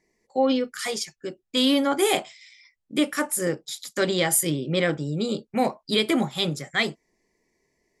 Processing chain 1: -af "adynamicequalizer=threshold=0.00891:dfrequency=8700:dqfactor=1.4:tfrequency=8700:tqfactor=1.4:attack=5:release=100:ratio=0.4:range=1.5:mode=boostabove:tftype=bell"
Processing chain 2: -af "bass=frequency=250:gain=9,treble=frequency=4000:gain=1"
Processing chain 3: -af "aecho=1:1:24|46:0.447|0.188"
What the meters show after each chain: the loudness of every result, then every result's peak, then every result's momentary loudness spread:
−24.0, −22.5, −23.5 LKFS; −6.5, −7.0, −7.0 dBFS; 10, 9, 10 LU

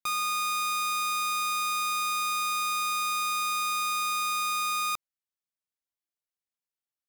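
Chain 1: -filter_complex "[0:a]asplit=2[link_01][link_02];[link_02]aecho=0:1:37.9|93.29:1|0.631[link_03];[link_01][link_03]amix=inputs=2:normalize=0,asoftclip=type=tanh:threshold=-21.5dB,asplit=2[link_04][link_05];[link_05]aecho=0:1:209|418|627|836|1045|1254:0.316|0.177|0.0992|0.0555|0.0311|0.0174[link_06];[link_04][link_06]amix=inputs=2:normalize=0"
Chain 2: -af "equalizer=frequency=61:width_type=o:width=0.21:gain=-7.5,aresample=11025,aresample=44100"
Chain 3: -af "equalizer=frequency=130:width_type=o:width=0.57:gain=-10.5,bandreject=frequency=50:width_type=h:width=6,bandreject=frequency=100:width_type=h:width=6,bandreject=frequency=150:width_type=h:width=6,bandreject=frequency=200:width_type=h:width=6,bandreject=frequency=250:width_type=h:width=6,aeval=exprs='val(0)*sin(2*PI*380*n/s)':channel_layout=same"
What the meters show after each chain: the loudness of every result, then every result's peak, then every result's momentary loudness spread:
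−24.5, −28.5, −30.5 LKFS; −19.5, −24.0, −23.5 dBFS; 4, 0, 0 LU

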